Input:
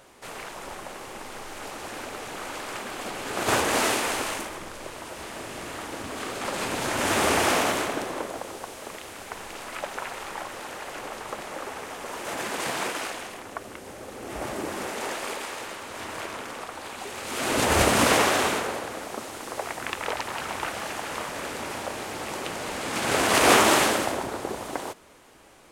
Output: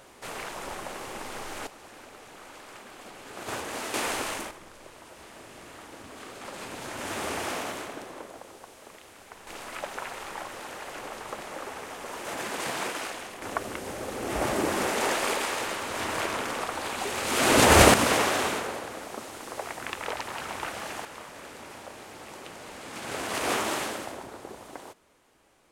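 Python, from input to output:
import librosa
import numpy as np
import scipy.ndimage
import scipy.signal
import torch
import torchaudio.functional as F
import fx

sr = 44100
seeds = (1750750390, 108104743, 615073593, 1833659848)

y = fx.gain(x, sr, db=fx.steps((0.0, 1.0), (1.67, -11.5), (3.94, -2.5), (4.51, -10.0), (9.47, -2.5), (13.42, 5.0), (17.94, -3.5), (21.05, -10.5)))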